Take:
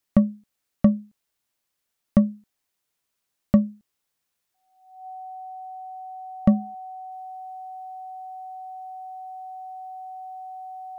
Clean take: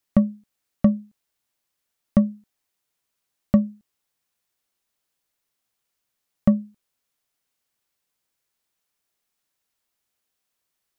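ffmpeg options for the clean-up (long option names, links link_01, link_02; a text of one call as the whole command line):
ffmpeg -i in.wav -af "bandreject=frequency=750:width=30,asetnsamples=nb_out_samples=441:pad=0,asendcmd='7.12 volume volume -3dB',volume=0dB" out.wav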